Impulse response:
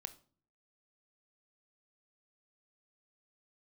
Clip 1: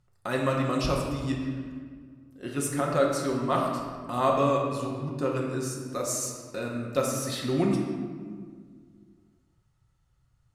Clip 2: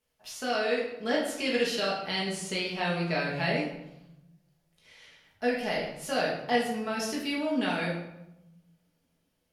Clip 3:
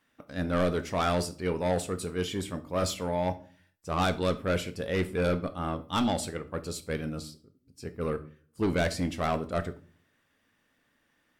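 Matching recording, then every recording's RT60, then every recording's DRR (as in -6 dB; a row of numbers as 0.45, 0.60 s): 3; 1.8, 0.90, 0.45 s; -1.5, -5.0, 11.0 dB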